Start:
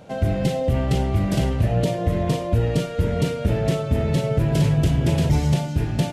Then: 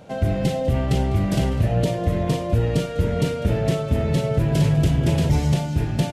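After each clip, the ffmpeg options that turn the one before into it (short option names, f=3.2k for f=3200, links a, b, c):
-af "aecho=1:1:200:0.133"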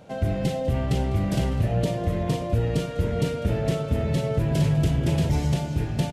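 -filter_complex "[0:a]asplit=2[a][b];[b]adelay=583.1,volume=-14dB,highshelf=f=4k:g=-13.1[c];[a][c]amix=inputs=2:normalize=0,volume=-3.5dB"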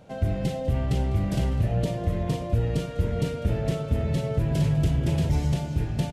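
-af "lowshelf=f=84:g=7.5,volume=-3.5dB"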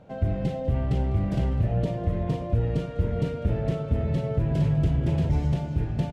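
-af "lowpass=f=1.8k:p=1"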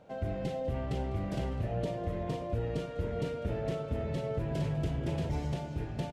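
-af "bass=f=250:g=-8,treble=f=4k:g=3,volume=-3dB"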